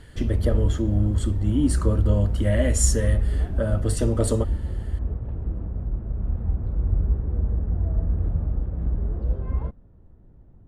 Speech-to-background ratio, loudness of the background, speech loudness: 2.0 dB, −27.0 LKFS, −25.0 LKFS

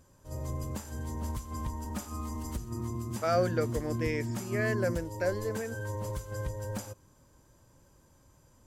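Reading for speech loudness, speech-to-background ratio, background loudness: −33.0 LKFS, 4.0 dB, −37.0 LKFS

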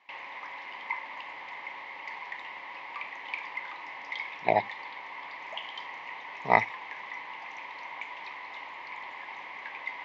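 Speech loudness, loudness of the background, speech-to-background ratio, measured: −27.5 LKFS, −39.0 LKFS, 11.5 dB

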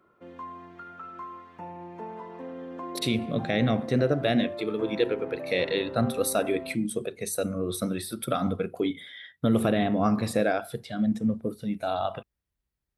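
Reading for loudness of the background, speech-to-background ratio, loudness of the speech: −39.5 LKFS, 11.5 dB, −28.0 LKFS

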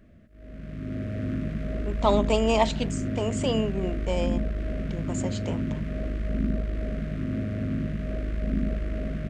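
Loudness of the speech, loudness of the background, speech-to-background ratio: −28.0 LKFS, −30.5 LKFS, 2.5 dB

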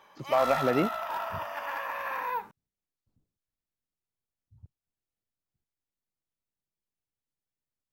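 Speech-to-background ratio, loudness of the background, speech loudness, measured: 5.5 dB, −33.5 LKFS, −28.0 LKFS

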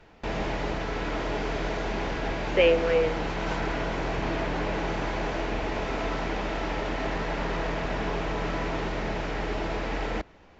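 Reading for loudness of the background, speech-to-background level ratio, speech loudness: −30.5 LKFS, 6.0 dB, −24.5 LKFS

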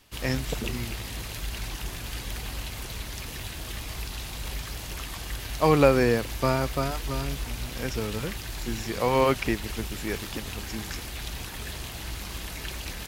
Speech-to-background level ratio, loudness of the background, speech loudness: 8.5 dB, −35.5 LKFS, −27.0 LKFS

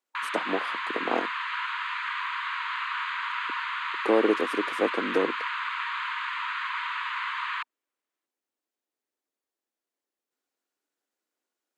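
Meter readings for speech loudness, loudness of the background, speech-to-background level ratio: −29.0 LKFS, −30.5 LKFS, 1.5 dB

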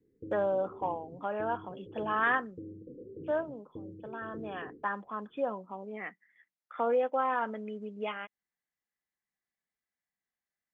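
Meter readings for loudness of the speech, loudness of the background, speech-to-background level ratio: −34.0 LKFS, −48.0 LKFS, 14.0 dB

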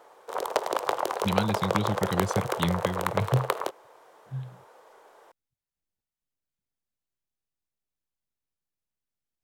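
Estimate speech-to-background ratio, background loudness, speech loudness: −1.0 dB, −30.0 LKFS, −31.0 LKFS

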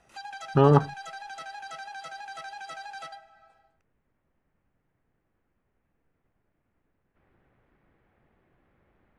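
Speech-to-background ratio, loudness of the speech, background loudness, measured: 18.5 dB, −22.0 LKFS, −40.5 LKFS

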